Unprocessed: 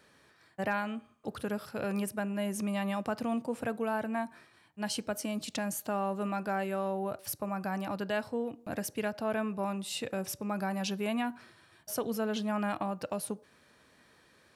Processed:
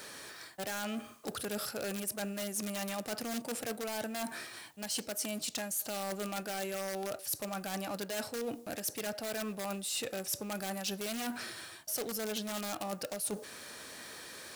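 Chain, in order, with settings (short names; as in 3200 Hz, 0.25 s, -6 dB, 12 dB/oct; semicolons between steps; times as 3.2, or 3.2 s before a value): G.711 law mismatch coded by mu; in parallel at -4.5 dB: wrapped overs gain 25.5 dB; on the sum: tone controls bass -8 dB, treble +9 dB; soft clip -15.5 dBFS, distortion -23 dB; reverse; compressor 6:1, threshold -36 dBFS, peak gain reduction 14 dB; reverse; dynamic EQ 1000 Hz, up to -7 dB, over -60 dBFS, Q 4.3; gain +1.5 dB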